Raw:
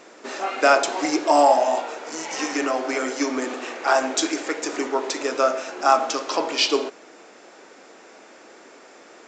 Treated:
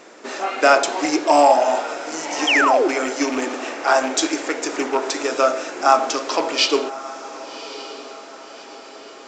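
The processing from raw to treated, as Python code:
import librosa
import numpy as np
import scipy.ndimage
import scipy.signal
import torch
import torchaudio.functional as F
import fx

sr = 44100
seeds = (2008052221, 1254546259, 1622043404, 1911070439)

y = fx.rattle_buzz(x, sr, strikes_db=-32.0, level_db=-23.0)
y = fx.echo_diffused(y, sr, ms=1144, feedback_pct=46, wet_db=-14.5)
y = fx.spec_paint(y, sr, seeds[0], shape='fall', start_s=2.47, length_s=0.41, low_hz=320.0, high_hz=3400.0, level_db=-19.0)
y = y * 10.0 ** (2.5 / 20.0)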